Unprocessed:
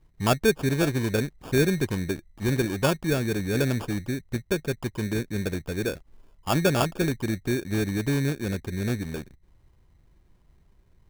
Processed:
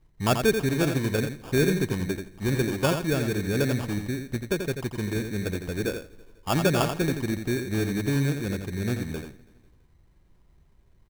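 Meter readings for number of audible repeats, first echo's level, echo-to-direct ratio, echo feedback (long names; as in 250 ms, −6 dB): 6, −7.0 dB, −7.0 dB, repeats not evenly spaced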